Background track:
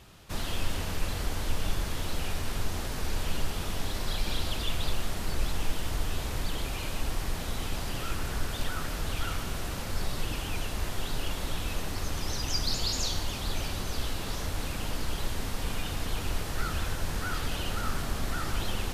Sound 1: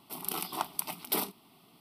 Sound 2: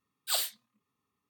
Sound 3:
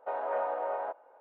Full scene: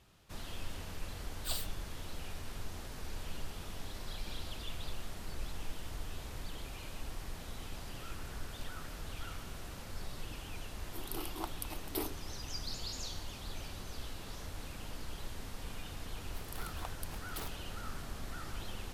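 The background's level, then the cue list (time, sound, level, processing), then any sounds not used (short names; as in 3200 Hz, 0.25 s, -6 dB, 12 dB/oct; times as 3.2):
background track -11.5 dB
1.17 add 2 -9.5 dB
10.83 add 1 -10 dB + resonant high-pass 320 Hz, resonance Q 3.8
16.24 add 1 -13 dB + Doppler distortion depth 0.46 ms
not used: 3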